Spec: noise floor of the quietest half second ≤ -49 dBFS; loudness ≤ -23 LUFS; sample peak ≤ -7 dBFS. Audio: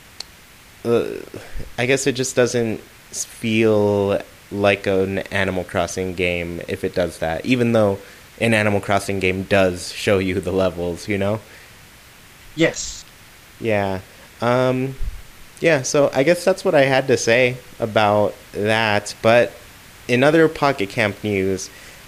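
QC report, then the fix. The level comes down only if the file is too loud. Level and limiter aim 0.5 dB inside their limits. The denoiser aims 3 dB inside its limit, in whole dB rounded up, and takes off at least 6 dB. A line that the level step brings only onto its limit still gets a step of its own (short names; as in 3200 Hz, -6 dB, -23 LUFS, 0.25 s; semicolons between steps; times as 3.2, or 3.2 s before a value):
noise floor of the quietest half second -45 dBFS: fail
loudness -19.5 LUFS: fail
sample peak -3.0 dBFS: fail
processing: denoiser 6 dB, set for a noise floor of -45 dBFS; gain -4 dB; limiter -7.5 dBFS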